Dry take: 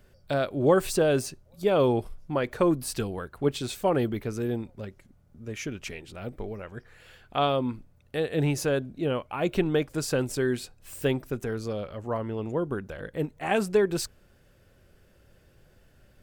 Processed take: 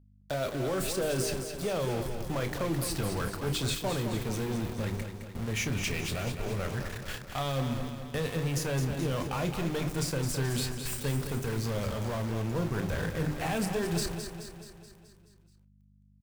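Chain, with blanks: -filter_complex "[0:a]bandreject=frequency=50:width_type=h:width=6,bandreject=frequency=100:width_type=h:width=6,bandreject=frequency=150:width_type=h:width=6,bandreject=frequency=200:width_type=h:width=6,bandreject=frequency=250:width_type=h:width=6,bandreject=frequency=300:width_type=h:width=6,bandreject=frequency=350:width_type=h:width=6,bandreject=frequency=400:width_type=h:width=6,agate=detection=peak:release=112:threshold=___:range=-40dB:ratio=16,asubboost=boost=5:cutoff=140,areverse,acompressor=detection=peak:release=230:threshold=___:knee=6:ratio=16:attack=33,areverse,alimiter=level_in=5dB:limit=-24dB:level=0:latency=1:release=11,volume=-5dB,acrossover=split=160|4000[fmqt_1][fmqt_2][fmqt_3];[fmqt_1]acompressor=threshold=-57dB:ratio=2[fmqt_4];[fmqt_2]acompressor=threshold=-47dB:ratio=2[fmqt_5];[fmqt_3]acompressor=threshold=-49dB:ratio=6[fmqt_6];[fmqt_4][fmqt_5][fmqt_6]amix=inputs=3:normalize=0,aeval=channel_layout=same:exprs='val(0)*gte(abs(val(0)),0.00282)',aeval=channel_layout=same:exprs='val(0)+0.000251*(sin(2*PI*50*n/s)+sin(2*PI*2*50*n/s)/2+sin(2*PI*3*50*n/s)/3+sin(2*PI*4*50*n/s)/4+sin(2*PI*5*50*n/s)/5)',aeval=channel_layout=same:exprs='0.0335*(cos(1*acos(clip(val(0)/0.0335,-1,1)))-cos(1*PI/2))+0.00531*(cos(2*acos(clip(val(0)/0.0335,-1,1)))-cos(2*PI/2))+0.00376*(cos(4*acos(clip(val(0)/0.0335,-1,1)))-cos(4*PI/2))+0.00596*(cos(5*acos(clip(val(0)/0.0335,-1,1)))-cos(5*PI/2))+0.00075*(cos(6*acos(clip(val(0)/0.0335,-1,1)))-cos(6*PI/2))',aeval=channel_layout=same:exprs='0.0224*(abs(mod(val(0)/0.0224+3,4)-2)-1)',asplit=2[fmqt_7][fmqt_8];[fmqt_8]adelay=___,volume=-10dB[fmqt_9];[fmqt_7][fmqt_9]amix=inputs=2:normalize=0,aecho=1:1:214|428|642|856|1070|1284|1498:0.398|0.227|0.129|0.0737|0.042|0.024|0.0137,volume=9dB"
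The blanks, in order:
-53dB, -36dB, 30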